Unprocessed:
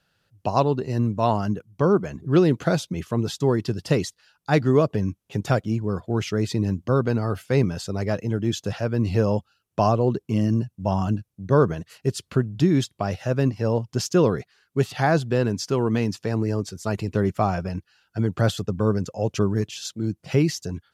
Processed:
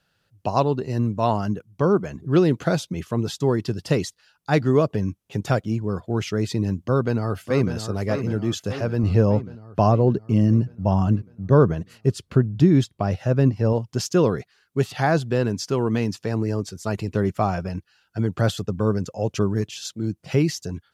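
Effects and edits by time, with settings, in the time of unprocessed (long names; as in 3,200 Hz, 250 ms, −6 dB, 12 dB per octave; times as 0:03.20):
0:06.81–0:07.75: delay throw 600 ms, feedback 60%, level −8.5 dB
0:09.03–0:13.73: spectral tilt −1.5 dB per octave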